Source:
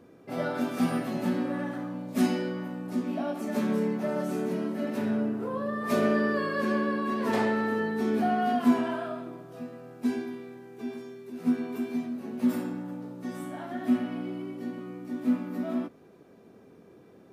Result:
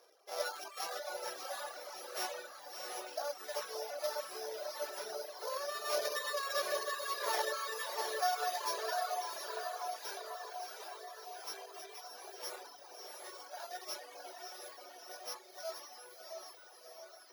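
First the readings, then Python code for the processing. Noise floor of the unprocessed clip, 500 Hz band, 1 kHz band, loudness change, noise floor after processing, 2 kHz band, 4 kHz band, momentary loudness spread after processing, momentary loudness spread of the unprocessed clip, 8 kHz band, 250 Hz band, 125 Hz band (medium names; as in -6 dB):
-55 dBFS, -9.0 dB, -5.0 dB, -10.0 dB, -57 dBFS, -6.5 dB, +4.0 dB, 14 LU, 13 LU, no reading, -35.5 dB, under -40 dB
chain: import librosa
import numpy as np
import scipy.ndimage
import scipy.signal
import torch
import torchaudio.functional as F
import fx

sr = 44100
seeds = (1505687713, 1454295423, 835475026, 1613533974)

p1 = np.r_[np.sort(x[:len(x) // 8 * 8].reshape(-1, 8), axis=1).ravel(), x[len(x) // 8 * 8:]]
p2 = fx.dereverb_blind(p1, sr, rt60_s=0.68)
p3 = scipy.signal.sosfilt(scipy.signal.cheby2(4, 40, 260.0, 'highpass', fs=sr, output='sos'), p2)
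p4 = p3 + fx.echo_diffused(p3, sr, ms=681, feedback_pct=65, wet_db=-3.0, dry=0)
p5 = fx.dereverb_blind(p4, sr, rt60_s=1.4)
y = p5 * 10.0 ** (-2.5 / 20.0)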